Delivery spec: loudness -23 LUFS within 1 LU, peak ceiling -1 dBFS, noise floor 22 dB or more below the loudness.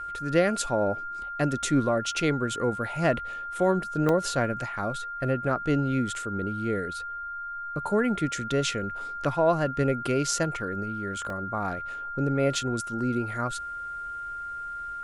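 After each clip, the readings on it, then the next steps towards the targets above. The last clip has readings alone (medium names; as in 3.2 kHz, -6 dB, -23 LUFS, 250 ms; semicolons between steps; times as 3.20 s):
dropouts 3; longest dropout 1.7 ms; steady tone 1.4 kHz; tone level -33 dBFS; loudness -28.0 LUFS; peak level -9.5 dBFS; loudness target -23.0 LUFS
-> interpolate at 1.63/4.09/11.30 s, 1.7 ms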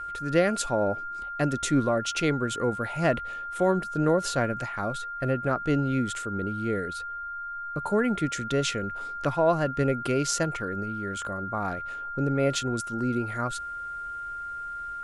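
dropouts 0; steady tone 1.4 kHz; tone level -33 dBFS
-> band-stop 1.4 kHz, Q 30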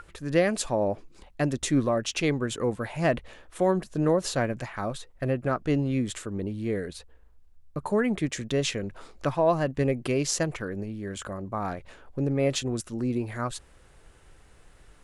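steady tone not found; loudness -28.0 LUFS; peak level -10.0 dBFS; loudness target -23.0 LUFS
-> trim +5 dB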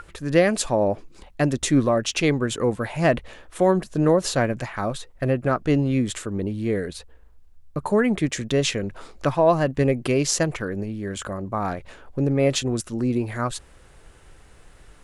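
loudness -23.0 LUFS; peak level -5.0 dBFS; noise floor -50 dBFS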